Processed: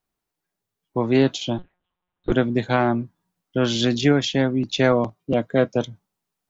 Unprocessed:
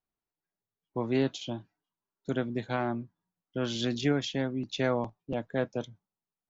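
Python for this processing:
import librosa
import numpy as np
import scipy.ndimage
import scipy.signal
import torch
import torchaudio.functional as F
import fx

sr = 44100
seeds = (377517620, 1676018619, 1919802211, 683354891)

p1 = fx.rider(x, sr, range_db=10, speed_s=0.5)
p2 = x + (p1 * 10.0 ** (3.0 / 20.0))
p3 = fx.lpc_monotone(p2, sr, seeds[0], pitch_hz=180.0, order=8, at=(1.58, 2.32))
p4 = fx.notch_comb(p3, sr, f0_hz=860.0, at=(4.92, 5.76))
y = p4 * 10.0 ** (3.5 / 20.0)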